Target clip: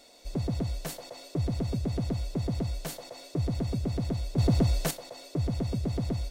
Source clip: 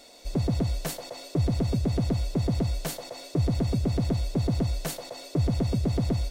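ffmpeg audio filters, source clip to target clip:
-filter_complex "[0:a]asettb=1/sr,asplit=3[a][b][c];[a]atrim=end=4.384[d];[b]atrim=start=4.38:end=4.91,asetpts=PTS-STARTPTS,afade=t=in:d=0.004:c=qsin,afade=t=out:st=0.526:d=0.004:c=qsin,acontrast=83[e];[c]atrim=start=4.906[f];[d][e]acrossfade=d=0.004:c1=hsin:c2=qsin[g];[g][f]acrossfade=d=0.004:c1=qsin:c2=hsin,volume=-4.5dB"

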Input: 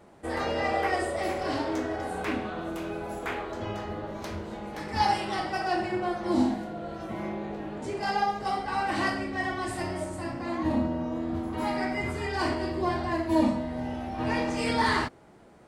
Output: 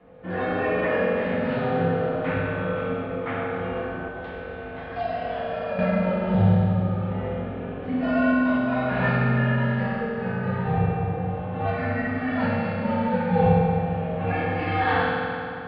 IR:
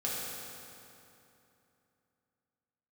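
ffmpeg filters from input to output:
-filter_complex "[0:a]highpass=f=200:t=q:w=0.5412,highpass=f=200:t=q:w=1.307,lowpass=f=3.3k:t=q:w=0.5176,lowpass=f=3.3k:t=q:w=0.7071,lowpass=f=3.3k:t=q:w=1.932,afreqshift=-150[a];[1:a]atrim=start_sample=2205[b];[a][b]afir=irnorm=-1:irlink=0,asettb=1/sr,asplit=3[c][d][e];[c]atrim=end=4.084[f];[d]atrim=start=4.08:end=5.79,asetpts=PTS-STARTPTS,afade=t=in:d=0.004:c=qsin,afade=t=out:st=1.706:d=0.004:c=qsin,acrossover=split=150|390|1100|2400[g][h][i][j][k];[g]acompressor=threshold=-41dB:ratio=4[l];[h]acompressor=threshold=-47dB:ratio=4[m];[i]acompressor=threshold=-27dB:ratio=4[n];[j]acompressor=threshold=-45dB:ratio=4[o];[k]acompressor=threshold=-47dB:ratio=4[p];[l][m][n][o][p]amix=inputs=5:normalize=0[q];[e]atrim=start=5.786[r];[f][q]acrossfade=d=0.004:c1=hsin:c2=qsin[s];[s][r]acrossfade=d=0.004:c1=qsin:c2=hsin"

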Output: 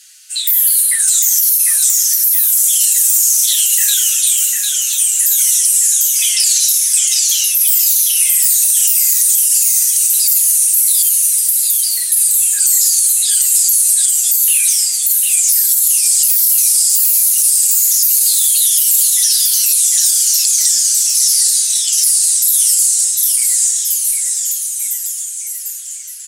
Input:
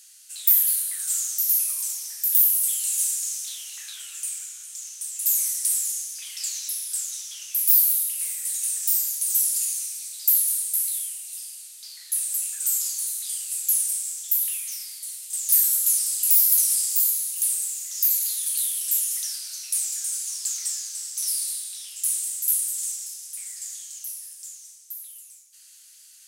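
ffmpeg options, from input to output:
-af "highpass=f=1.3k:w=0.5412,highpass=f=1.3k:w=1.3066,aemphasis=mode=reproduction:type=cd,afftdn=nr=12:nf=-43,aecho=1:1:6.7:0.74,acompressor=threshold=-30dB:ratio=6,aecho=1:1:750|1425|2032|2579|3071:0.631|0.398|0.251|0.158|0.1,alimiter=level_in=25dB:limit=-1dB:release=50:level=0:latency=1,volume=-1dB"

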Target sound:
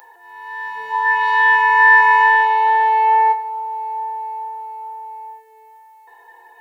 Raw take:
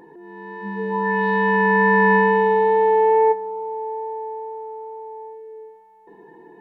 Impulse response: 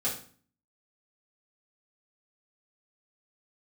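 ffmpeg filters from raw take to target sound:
-filter_complex "[0:a]highpass=f=780:w=0.5412,highpass=f=780:w=1.3066,aemphasis=mode=production:type=50kf,asplit=2[a][b];[1:a]atrim=start_sample=2205[c];[b][c]afir=irnorm=-1:irlink=0,volume=-9dB[d];[a][d]amix=inputs=2:normalize=0,volume=4.5dB"

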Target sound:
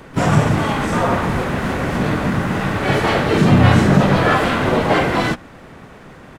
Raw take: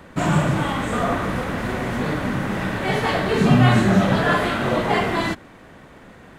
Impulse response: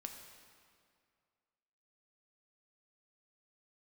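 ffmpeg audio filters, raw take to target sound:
-filter_complex "[0:a]acontrast=61,asplit=3[a][b][c];[b]asetrate=33038,aresample=44100,atempo=1.33484,volume=-1dB[d];[c]asetrate=58866,aresample=44100,atempo=0.749154,volume=-10dB[e];[a][d][e]amix=inputs=3:normalize=0,volume=-4dB"

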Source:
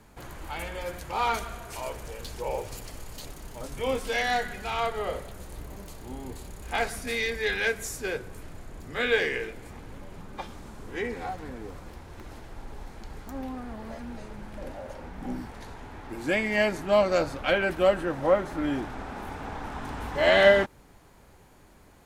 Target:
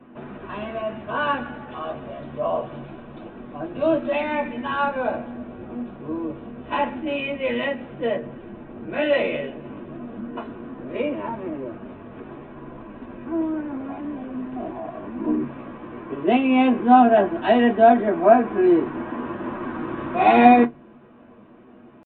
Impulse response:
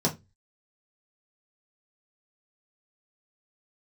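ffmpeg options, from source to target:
-filter_complex "[0:a]asetrate=53981,aresample=44100,atempo=0.816958[a];[1:a]atrim=start_sample=2205,asetrate=66150,aresample=44100[b];[a][b]afir=irnorm=-1:irlink=0,aresample=8000,aresample=44100,volume=-5dB"

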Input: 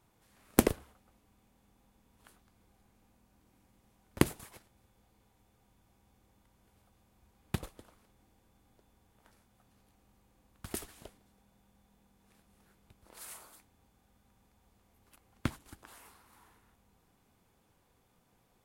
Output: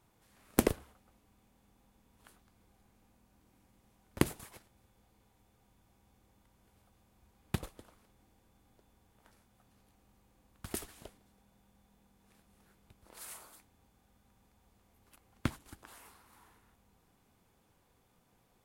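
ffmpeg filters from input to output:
-af "alimiter=limit=-8dB:level=0:latency=1:release=95"

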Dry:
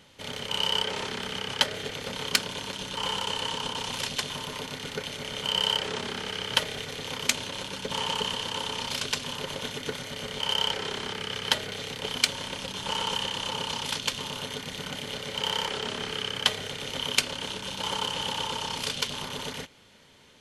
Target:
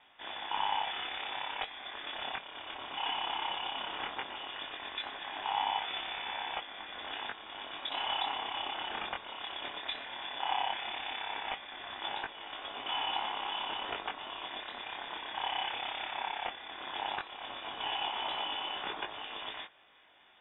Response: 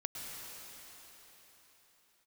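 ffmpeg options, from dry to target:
-filter_complex "[0:a]highpass=150,equalizer=f=750:t=o:w=0.23:g=-7.5,acrossover=split=280[a][b];[a]acrusher=bits=5:mix=0:aa=0.000001[c];[b]alimiter=limit=-14.5dB:level=0:latency=1:release=466[d];[c][d]amix=inputs=2:normalize=0,flanger=delay=18.5:depth=5.8:speed=0.16,lowpass=f=3.3k:t=q:w=0.5098,lowpass=f=3.3k:t=q:w=0.6013,lowpass=f=3.3k:t=q:w=0.9,lowpass=f=3.3k:t=q:w=2.563,afreqshift=-3900" -ar 32000 -c:a ac3 -b:a 96k

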